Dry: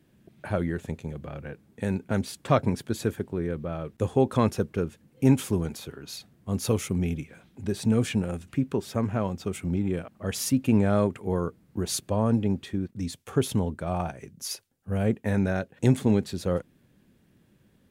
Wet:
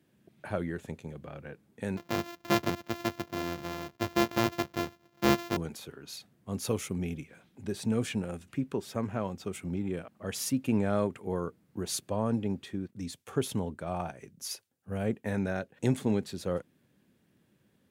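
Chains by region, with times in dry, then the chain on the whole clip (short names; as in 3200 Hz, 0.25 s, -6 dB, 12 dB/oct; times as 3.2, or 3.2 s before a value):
1.97–5.57 sample sorter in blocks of 128 samples + bell 9100 Hz -14 dB 0.39 oct
whole clip: HPF 72 Hz; low shelf 180 Hz -5 dB; gain -4 dB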